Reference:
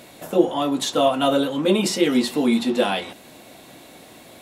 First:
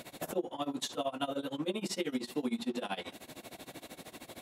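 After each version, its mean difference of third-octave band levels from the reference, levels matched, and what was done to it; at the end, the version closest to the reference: 6.0 dB: compressor 4:1, threshold -31 dBFS, peak gain reduction 17.5 dB; tremolo 13 Hz, depth 92%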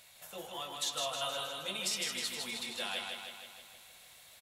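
9.5 dB: passive tone stack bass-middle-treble 10-0-10; on a send: feedback echo 0.157 s, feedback 59%, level -4 dB; on the sum: gain -8 dB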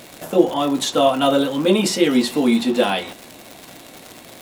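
1.5 dB: crackle 180/s -28 dBFS; gain +2.5 dB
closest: third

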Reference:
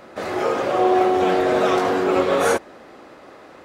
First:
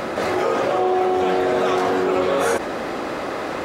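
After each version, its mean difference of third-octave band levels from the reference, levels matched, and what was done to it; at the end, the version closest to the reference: 6.5 dB: fast leveller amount 70%; gain -3 dB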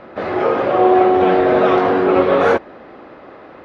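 3.5 dB: air absorption 310 m; gain +6 dB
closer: second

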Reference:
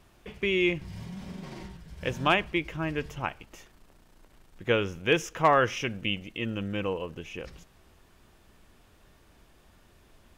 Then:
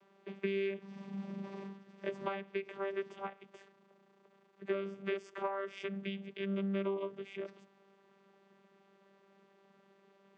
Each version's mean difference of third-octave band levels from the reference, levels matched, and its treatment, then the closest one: 9.0 dB: tone controls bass -14 dB, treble -6 dB; compressor 16:1, threshold -31 dBFS, peak gain reduction 15.5 dB; vocoder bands 16, saw 196 Hz; gain +1 dB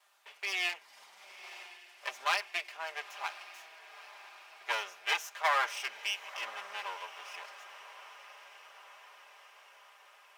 15.5 dB: minimum comb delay 5 ms; HPF 730 Hz 24 dB/oct; on a send: diffused feedback echo 0.983 s, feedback 64%, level -15 dB; on the sum: gain -3 dB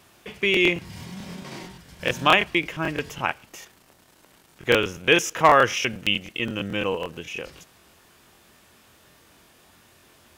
4.0 dB: HPF 77 Hz; tilt +1.5 dB/oct; crackling interface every 0.11 s, samples 1024, repeat, from 0.52; gain +6 dB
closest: third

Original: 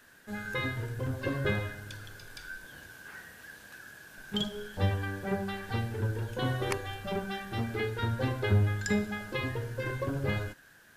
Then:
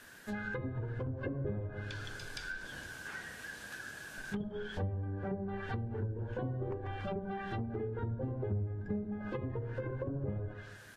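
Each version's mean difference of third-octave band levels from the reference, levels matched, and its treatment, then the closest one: 10.0 dB: on a send: feedback echo 0.143 s, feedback 42%, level -16.5 dB; on the sum: treble ducked by the level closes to 560 Hz, closed at -29 dBFS; compressor 3:1, threshold -40 dBFS, peak gain reduction 14.5 dB; gain +3.5 dB; Vorbis 48 kbps 44100 Hz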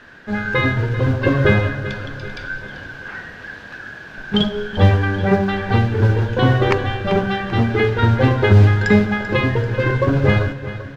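5.5 dB: modulation noise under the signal 19 dB; air absorption 220 m; feedback echo 0.389 s, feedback 49%, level -14 dB; maximiser +17.5 dB; gain -1 dB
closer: second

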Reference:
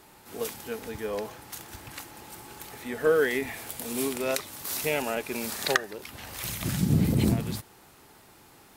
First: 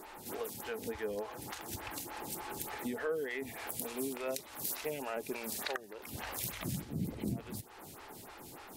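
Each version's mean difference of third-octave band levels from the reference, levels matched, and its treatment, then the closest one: 7.0 dB: compressor 4:1, threshold -42 dBFS, peak gain reduction 21 dB; photocell phaser 3.4 Hz; gain +7 dB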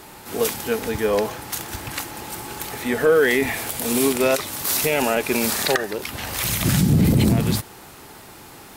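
3.0 dB: soft clip -11 dBFS, distortion -23 dB; maximiser +20 dB; gain -8 dB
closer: second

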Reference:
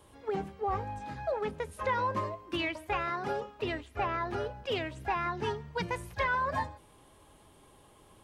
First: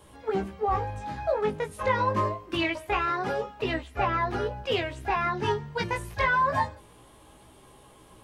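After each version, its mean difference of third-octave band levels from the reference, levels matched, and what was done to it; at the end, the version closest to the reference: 1.5 dB: chorus 0.26 Hz, delay 15.5 ms, depth 3.9 ms; gain +8.5 dB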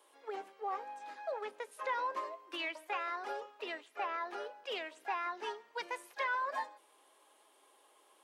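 7.0 dB: Bessel high-pass 550 Hz, order 8; gain -4 dB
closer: first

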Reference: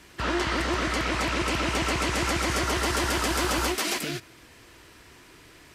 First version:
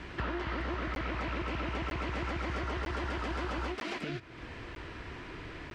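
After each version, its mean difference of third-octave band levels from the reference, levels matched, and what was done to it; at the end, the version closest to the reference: 8.5 dB: LPF 2700 Hz 12 dB/oct; compressor 4:1, threshold -45 dBFS, peak gain reduction 18 dB; low shelf 110 Hz +6 dB; crackling interface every 0.95 s, samples 512, zero, from 0.95; gain +7.5 dB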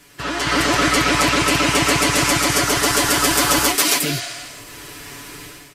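4.0 dB: high shelf 7300 Hz +10.5 dB; comb 7 ms, depth 87%; AGC gain up to 13.5 dB; spectral repair 4.18–4.63, 520–10000 Hz both; gain -1.5 dB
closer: second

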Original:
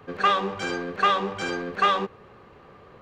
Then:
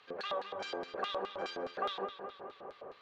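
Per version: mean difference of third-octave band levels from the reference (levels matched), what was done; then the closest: 7.0 dB: high shelf 4500 Hz -5.5 dB; compressor 2:1, threshold -42 dBFS, peak gain reduction 13.5 dB; LFO band-pass square 4.8 Hz 620–4100 Hz; on a send: darkening echo 0.211 s, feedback 64%, low-pass 3800 Hz, level -8 dB; on the sum: gain +7.5 dB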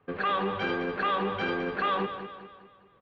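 5.0 dB: gate -45 dBFS, range -16 dB; LPF 3500 Hz 24 dB/oct; limiter -20 dBFS, peak gain reduction 9.5 dB; feedback echo 0.204 s, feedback 45%, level -10 dB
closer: second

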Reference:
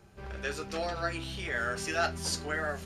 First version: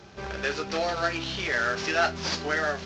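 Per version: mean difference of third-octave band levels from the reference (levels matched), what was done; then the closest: 4.5 dB: CVSD 32 kbps; low shelf 120 Hz -11.5 dB; in parallel at +2 dB: compressor, threshold -44 dBFS, peak gain reduction 17.5 dB; on the sum: gain +4.5 dB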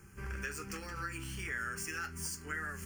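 6.5 dB: median filter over 3 samples; high shelf 4000 Hz +12 dB; compressor 5:1, threshold -37 dBFS, peak gain reduction 14 dB; fixed phaser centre 1600 Hz, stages 4; gain +2.5 dB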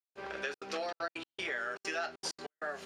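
9.0 dB: HPF 170 Hz 6 dB/oct; three-band isolator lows -19 dB, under 250 Hz, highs -12 dB, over 6500 Hz; compressor, threshold -39 dBFS, peak gain reduction 13.5 dB; step gate "..xxxxx.xxxx.x.x" 195 bpm -60 dB; gain +5 dB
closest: first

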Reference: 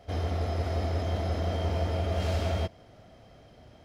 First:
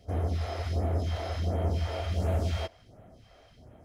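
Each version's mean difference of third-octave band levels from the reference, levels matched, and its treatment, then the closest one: 3.5 dB: phaser stages 2, 1.4 Hz, lowest notch 140–4700 Hz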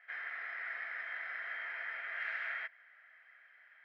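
16.0 dB: Butterworth band-pass 1800 Hz, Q 3.2; gain +10.5 dB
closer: first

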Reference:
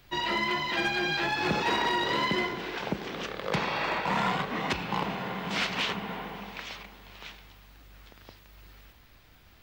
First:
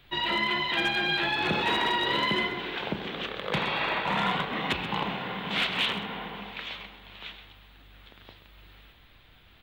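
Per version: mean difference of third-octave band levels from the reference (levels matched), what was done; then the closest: 3.0 dB: resonant high shelf 4400 Hz -7 dB, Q 3; de-hum 59.93 Hz, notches 21; overloaded stage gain 19.5 dB; on a send: echo 0.13 s -12.5 dB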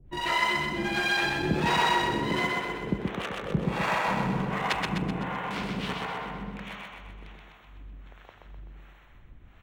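5.0 dB: Wiener smoothing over 9 samples; low shelf 110 Hz +6 dB; harmonic tremolo 1.4 Hz, depth 100%, crossover 470 Hz; on a send: feedback echo 0.127 s, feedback 53%, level -3 dB; on the sum: gain +4 dB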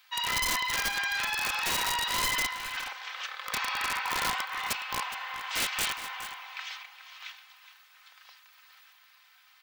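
10.0 dB: HPF 990 Hz 24 dB/oct; comb 3.9 ms, depth 58%; wrapped overs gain 22 dB; on a send: echo 0.416 s -13 dB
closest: first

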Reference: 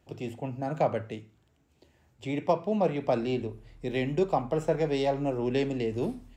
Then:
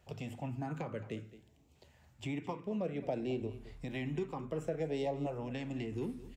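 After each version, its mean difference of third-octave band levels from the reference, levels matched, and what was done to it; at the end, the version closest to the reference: 4.0 dB: dynamic EQ 4500 Hz, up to -7 dB, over -58 dBFS, Q 1.8; compressor 2.5:1, threshold -37 dBFS, peak gain reduction 12 dB; LFO notch saw up 0.57 Hz 280–1700 Hz; on a send: echo 0.217 s -16 dB; on the sum: gain +1 dB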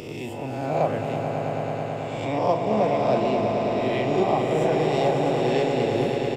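8.5 dB: spectral swells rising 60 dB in 0.97 s; doubler 38 ms -11 dB; swelling echo 0.109 s, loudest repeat 5, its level -8 dB; mismatched tape noise reduction encoder only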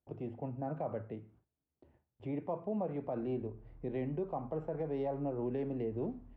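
5.5 dB: in parallel at +0.5 dB: compressor, threshold -39 dBFS, peak gain reduction 18 dB; on the sum: LPF 1200 Hz 12 dB/oct; gate with hold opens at -47 dBFS; limiter -19 dBFS, peak gain reduction 6.5 dB; gain -8.5 dB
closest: first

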